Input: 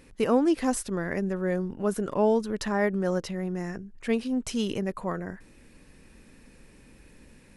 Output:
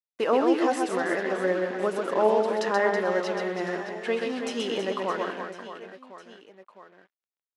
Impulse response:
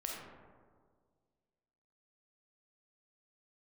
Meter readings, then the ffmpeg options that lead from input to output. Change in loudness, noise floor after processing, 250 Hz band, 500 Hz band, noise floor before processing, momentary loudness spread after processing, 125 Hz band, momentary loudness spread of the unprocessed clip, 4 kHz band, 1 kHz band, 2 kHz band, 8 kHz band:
+1.5 dB, under -85 dBFS, -2.5 dB, +3.5 dB, -55 dBFS, 14 LU, -9.0 dB, 10 LU, +4.0 dB, +6.0 dB, +6.0 dB, -4.5 dB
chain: -filter_complex "[0:a]aemphasis=mode=production:type=bsi,bandreject=f=2.3k:w=11,agate=range=-33dB:threshold=-51dB:ratio=3:detection=peak,highshelf=f=2.1k:g=-3.5,asplit=2[a][b];[b]acompressor=threshold=-33dB:ratio=6,volume=-2.5dB[c];[a][c]amix=inputs=2:normalize=0,flanger=delay=4.7:depth=6.2:regen=67:speed=0.59:shape=sinusoidal,acrusher=bits=6:mix=0:aa=0.5,highpass=340,lowpass=3.1k,aecho=1:1:130|325|617.5|1056|1714:0.631|0.398|0.251|0.158|0.1,volume=6.5dB"

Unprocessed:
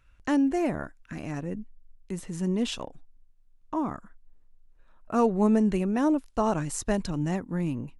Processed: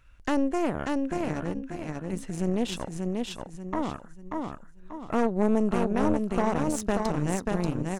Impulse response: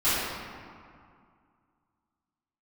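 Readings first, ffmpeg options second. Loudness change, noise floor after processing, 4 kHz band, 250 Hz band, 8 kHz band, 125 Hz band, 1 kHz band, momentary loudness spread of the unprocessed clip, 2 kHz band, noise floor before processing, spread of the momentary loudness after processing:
-1.0 dB, -48 dBFS, +0.5 dB, -0.5 dB, 0.0 dB, +0.5 dB, +1.0 dB, 15 LU, +2.0 dB, -59 dBFS, 11 LU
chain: -af "aecho=1:1:586|1172|1758|2344:0.631|0.208|0.0687|0.0227,acompressor=threshold=-43dB:ratio=1.5,aeval=exprs='0.112*(cos(1*acos(clip(val(0)/0.112,-1,1)))-cos(1*PI/2))+0.02*(cos(3*acos(clip(val(0)/0.112,-1,1)))-cos(3*PI/2))+0.0251*(cos(4*acos(clip(val(0)/0.112,-1,1)))-cos(4*PI/2))+0.0141*(cos(5*acos(clip(val(0)/0.112,-1,1)))-cos(5*PI/2))+0.00501*(cos(7*acos(clip(val(0)/0.112,-1,1)))-cos(7*PI/2))':c=same,volume=6dB"

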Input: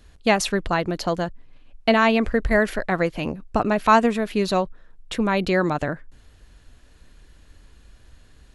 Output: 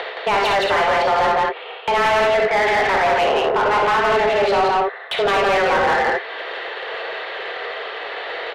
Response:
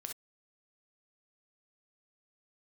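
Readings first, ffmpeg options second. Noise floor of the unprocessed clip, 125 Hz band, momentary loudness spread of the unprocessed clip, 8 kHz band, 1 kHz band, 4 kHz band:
-52 dBFS, -6.5 dB, 11 LU, -2.0 dB, +7.5 dB, +7.0 dB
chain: -filter_complex "[0:a]asplit=2[a][b];[b]acompressor=mode=upward:threshold=-25dB:ratio=2.5,volume=-2.5dB[c];[a][c]amix=inputs=2:normalize=0,alimiter=limit=-8.5dB:level=0:latency=1,areverse,acompressor=threshold=-25dB:ratio=12,areverse,highpass=f=220:t=q:w=0.5412,highpass=f=220:t=q:w=1.307,lowpass=f=3.6k:t=q:w=0.5176,lowpass=f=3.6k:t=q:w=0.7071,lowpass=f=3.6k:t=q:w=1.932,afreqshift=200,aecho=1:1:87.46|169.1:0.355|0.794[d];[1:a]atrim=start_sample=2205[e];[d][e]afir=irnorm=-1:irlink=0,asplit=2[f][g];[g]highpass=f=720:p=1,volume=24dB,asoftclip=type=tanh:threshold=-17dB[h];[f][h]amix=inputs=2:normalize=0,lowpass=f=2.1k:p=1,volume=-6dB,volume=8dB"

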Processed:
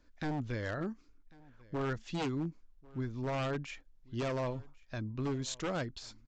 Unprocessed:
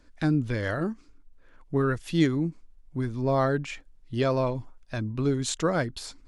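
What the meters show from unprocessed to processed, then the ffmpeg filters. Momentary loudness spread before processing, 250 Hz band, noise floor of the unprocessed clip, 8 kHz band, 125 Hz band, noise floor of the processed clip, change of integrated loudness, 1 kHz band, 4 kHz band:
12 LU, -10.5 dB, -56 dBFS, -9.5 dB, -9.5 dB, -64 dBFS, -10.0 dB, -8.5 dB, -7.5 dB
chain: -af "aresample=16000,aeval=exprs='0.0891*(abs(mod(val(0)/0.0891+3,4)-2)-1)':c=same,aresample=44100,aecho=1:1:1094:0.0631,volume=-8dB"

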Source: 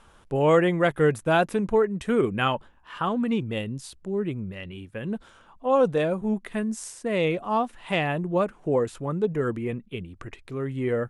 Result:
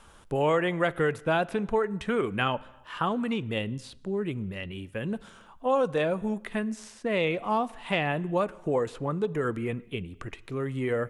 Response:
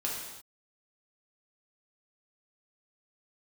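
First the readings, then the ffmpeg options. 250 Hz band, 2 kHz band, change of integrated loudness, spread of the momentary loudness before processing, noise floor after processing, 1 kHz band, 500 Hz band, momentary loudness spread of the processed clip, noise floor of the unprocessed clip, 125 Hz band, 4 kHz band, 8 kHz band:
-4.0 dB, -1.0 dB, -3.5 dB, 14 LU, -53 dBFS, -2.5 dB, -4.0 dB, 10 LU, -56 dBFS, -3.5 dB, -1.0 dB, -7.5 dB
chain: -filter_complex "[0:a]highshelf=f=4.8k:g=6,acrossover=split=580|4500[a][b][c];[a]acompressor=threshold=-29dB:ratio=4[d];[b]acompressor=threshold=-25dB:ratio=4[e];[c]acompressor=threshold=-58dB:ratio=4[f];[d][e][f]amix=inputs=3:normalize=0,asplit=2[g][h];[1:a]atrim=start_sample=2205,highshelf=f=7.9k:g=-11.5[i];[h][i]afir=irnorm=-1:irlink=0,volume=-21.5dB[j];[g][j]amix=inputs=2:normalize=0"

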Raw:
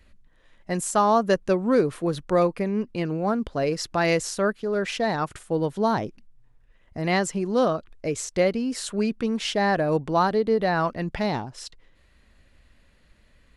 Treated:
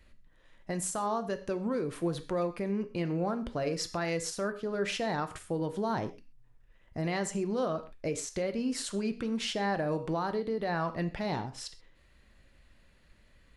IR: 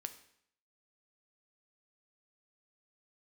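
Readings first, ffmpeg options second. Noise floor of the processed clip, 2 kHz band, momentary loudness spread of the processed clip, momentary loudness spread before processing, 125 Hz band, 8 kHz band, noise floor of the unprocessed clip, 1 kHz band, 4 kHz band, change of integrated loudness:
-62 dBFS, -9.0 dB, 4 LU, 8 LU, -6.5 dB, -5.0 dB, -59 dBFS, -10.0 dB, -6.0 dB, -8.5 dB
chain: -filter_complex "[0:a]acompressor=threshold=-23dB:ratio=2.5,alimiter=limit=-20.5dB:level=0:latency=1:release=132[a];[1:a]atrim=start_sample=2205,atrim=end_sample=6174[b];[a][b]afir=irnorm=-1:irlink=0"

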